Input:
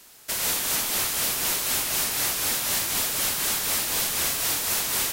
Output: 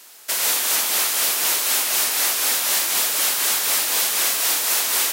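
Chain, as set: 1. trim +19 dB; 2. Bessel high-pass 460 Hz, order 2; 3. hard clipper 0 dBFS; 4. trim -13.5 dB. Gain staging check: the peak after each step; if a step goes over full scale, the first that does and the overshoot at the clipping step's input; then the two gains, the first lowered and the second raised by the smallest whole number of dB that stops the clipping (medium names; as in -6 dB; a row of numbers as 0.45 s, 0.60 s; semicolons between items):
+0.5 dBFS, +4.0 dBFS, 0.0 dBFS, -13.5 dBFS; step 1, 4.0 dB; step 1 +15 dB, step 4 -9.5 dB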